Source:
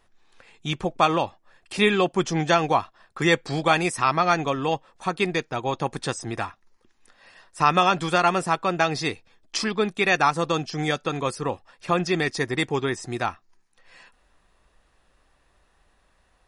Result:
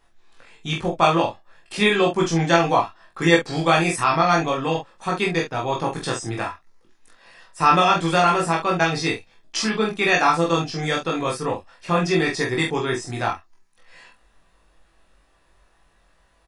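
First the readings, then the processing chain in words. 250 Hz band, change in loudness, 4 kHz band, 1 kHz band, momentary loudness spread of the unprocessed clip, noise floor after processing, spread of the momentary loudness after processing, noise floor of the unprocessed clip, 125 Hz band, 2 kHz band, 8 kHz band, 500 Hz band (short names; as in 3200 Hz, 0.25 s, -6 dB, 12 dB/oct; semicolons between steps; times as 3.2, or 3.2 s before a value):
+3.5 dB, +3.0 dB, +3.0 dB, +2.5 dB, 11 LU, -60 dBFS, 10 LU, -65 dBFS, +3.5 dB, +3.0 dB, +3.0 dB, +3.0 dB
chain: doubler 24 ms -4 dB; on a send: early reflections 18 ms -3.5 dB, 45 ms -5 dB; on the sum: gain -1 dB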